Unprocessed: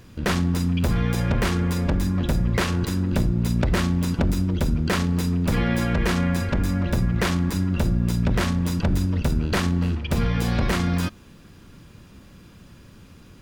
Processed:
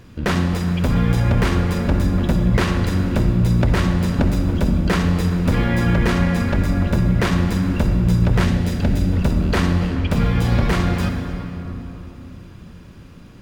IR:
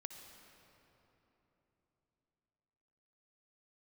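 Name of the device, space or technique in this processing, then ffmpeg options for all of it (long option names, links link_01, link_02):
swimming-pool hall: -filter_complex "[1:a]atrim=start_sample=2205[link_01];[0:a][link_01]afir=irnorm=-1:irlink=0,highshelf=frequency=4500:gain=-6.5,asettb=1/sr,asplit=3[link_02][link_03][link_04];[link_02]atrim=end=8.454[link_05];[link_03]atrim=start=8.45:end=9.15,asetpts=PTS-STARTPTS,afade=type=in:duration=0.004:curve=qsin,afade=type=out:start_time=0.696:duration=0.004:curve=qsin,equalizer=frequency=1100:width_type=o:width=0.61:gain=-8[link_06];[link_04]atrim=start=9.146[link_07];[link_05][link_06]acrossfade=duration=0.004:curve1=hsin:curve2=qsin[link_08];[link_08][link_07]acrossfade=duration=0.004:curve1=qsin:curve2=hsin,volume=8.5dB"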